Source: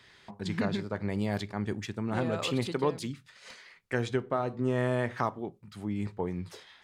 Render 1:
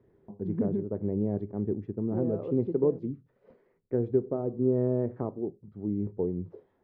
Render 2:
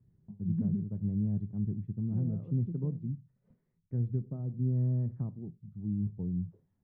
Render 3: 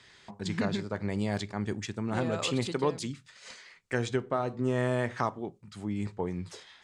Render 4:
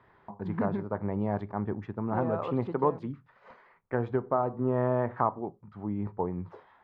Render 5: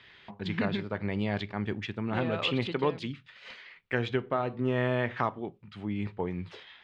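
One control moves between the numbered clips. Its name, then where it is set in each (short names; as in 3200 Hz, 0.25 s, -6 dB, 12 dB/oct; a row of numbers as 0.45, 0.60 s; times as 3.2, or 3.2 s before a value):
synth low-pass, frequency: 410, 160, 7800, 1000, 3000 Hz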